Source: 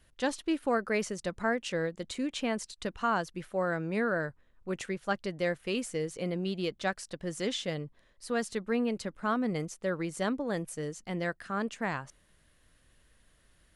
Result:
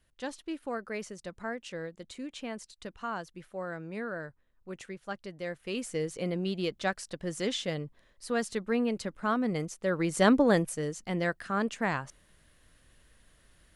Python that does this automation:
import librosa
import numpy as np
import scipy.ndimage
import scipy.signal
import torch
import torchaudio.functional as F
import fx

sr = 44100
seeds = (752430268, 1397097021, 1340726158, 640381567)

y = fx.gain(x, sr, db=fx.line((5.44, -7.0), (5.98, 1.0), (9.81, 1.0), (10.42, 11.5), (10.78, 3.0)))